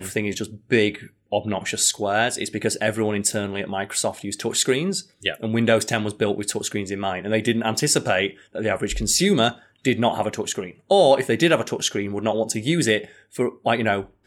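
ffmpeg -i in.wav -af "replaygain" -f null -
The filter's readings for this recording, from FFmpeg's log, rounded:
track_gain = +2.0 dB
track_peak = 0.407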